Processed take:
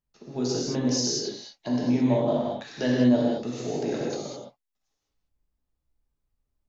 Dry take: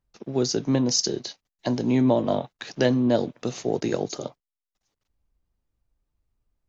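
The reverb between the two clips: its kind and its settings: non-linear reverb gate 0.24 s flat, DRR -5 dB; gain -9 dB

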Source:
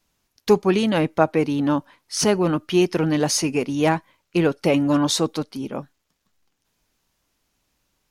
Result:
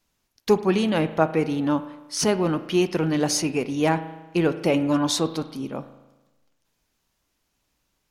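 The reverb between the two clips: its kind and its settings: spring tank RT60 1.1 s, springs 37 ms, chirp 20 ms, DRR 12 dB; gain -2.5 dB

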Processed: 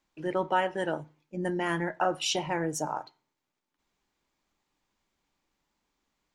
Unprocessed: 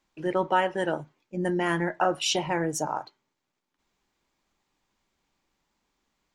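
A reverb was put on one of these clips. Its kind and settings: FDN reverb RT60 0.39 s, low-frequency decay 1.25×, high-frequency decay 0.9×, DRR 19.5 dB; gain -3 dB

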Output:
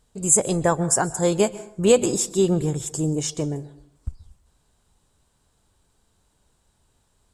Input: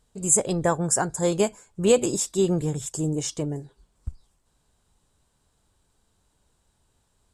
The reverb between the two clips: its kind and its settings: plate-style reverb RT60 0.67 s, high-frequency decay 0.6×, pre-delay 0.115 s, DRR 17 dB; gain +2.5 dB

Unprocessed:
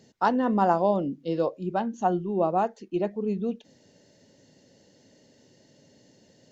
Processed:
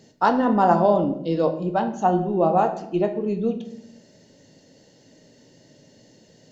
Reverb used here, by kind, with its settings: shoebox room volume 190 m³, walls mixed, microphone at 0.49 m; gain +4 dB

